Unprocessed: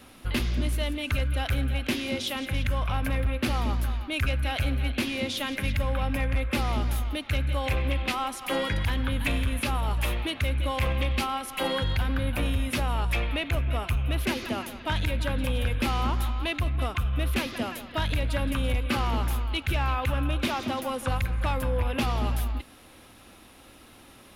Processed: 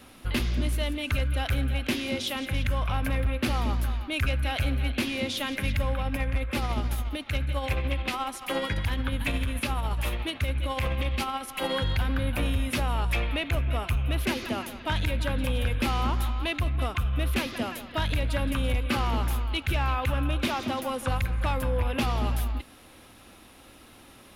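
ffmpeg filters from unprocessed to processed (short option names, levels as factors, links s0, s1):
-filter_complex "[0:a]asettb=1/sr,asplit=3[s0][s1][s2];[s0]atrim=end=5.934[s3];[s1]atrim=start=5.93:end=11.71,asetpts=PTS-STARTPTS,afade=t=in:d=0.004:c=qsin,afade=t=out:st=5.776:d=0.004:c=qsin,tremolo=f=14:d=0.37[s4];[s2]atrim=start=11.706[s5];[s3][s4]acrossfade=d=0.004:c1=hsin:c2=qsin[s6];[s6][s5]acrossfade=d=0.004:c1=qsin:c2=hsin"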